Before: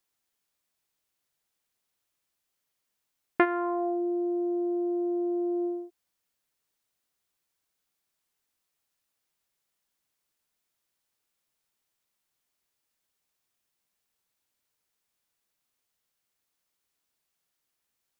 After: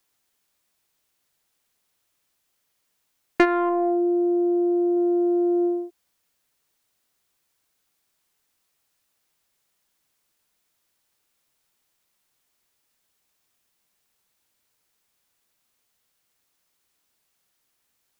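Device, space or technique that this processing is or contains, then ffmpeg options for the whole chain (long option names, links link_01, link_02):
one-band saturation: -filter_complex "[0:a]acrossover=split=330|2000[link_01][link_02][link_03];[link_02]asoftclip=type=tanh:threshold=-22dB[link_04];[link_01][link_04][link_03]amix=inputs=3:normalize=0,asettb=1/sr,asplit=3[link_05][link_06][link_07];[link_05]atrim=end=3.694[link_08];[link_06]atrim=start=3.69:end=4.97,asetpts=PTS-STARTPTS,afade=type=in:duration=0.004:curve=qsin,afade=type=out:start_time=1.276:duration=0.004:curve=qsin,equalizer=frequency=2600:width_type=o:width=2.1:gain=-6[link_09];[link_07]atrim=start=4.966[link_10];[link_08][link_09]acrossfade=duration=0.004:curve1=hsin:curve2=qsin[link_11];[link_11][link_10]acrossfade=duration=0.004:curve1=qsin:curve2=hsin,volume=8dB"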